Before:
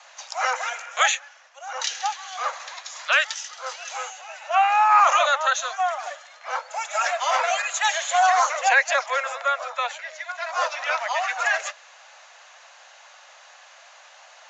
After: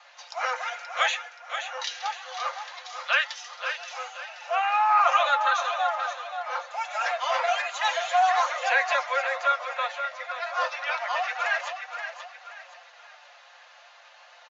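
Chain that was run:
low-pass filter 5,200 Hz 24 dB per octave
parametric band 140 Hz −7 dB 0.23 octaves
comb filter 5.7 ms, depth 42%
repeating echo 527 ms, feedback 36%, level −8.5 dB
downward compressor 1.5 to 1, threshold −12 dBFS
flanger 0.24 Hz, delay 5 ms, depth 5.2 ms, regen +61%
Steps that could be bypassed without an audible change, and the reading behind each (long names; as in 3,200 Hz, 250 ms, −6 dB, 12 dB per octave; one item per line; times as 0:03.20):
parametric band 140 Hz: nothing at its input below 450 Hz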